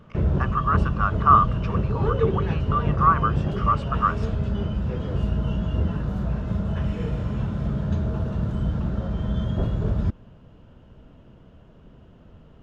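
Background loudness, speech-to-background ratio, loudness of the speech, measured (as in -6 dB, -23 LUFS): -26.0 LUFS, 3.0 dB, -23.0 LUFS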